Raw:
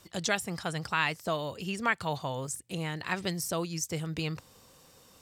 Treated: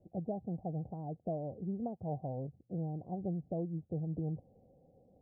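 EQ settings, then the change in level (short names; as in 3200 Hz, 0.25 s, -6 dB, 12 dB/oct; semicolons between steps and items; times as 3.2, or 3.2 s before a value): dynamic EQ 550 Hz, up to -4 dB, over -46 dBFS, Q 2.4; rippled Chebyshev low-pass 780 Hz, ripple 3 dB; -1.0 dB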